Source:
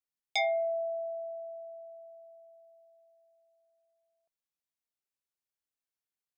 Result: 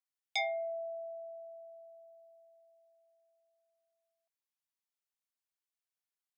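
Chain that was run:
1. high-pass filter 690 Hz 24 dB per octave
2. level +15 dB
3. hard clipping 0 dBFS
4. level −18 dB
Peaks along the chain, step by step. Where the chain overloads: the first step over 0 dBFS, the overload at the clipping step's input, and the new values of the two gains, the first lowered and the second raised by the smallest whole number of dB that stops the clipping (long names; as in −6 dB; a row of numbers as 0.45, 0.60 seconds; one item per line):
−18.5, −3.5, −3.5, −21.5 dBFS
no step passes full scale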